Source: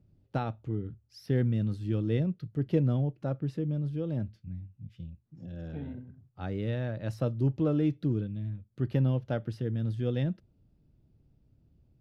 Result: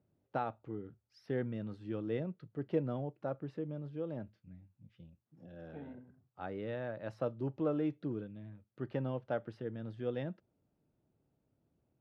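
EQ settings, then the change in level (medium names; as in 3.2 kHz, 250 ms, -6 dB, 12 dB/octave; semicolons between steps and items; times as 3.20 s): band-pass filter 900 Hz, Q 0.72; 0.0 dB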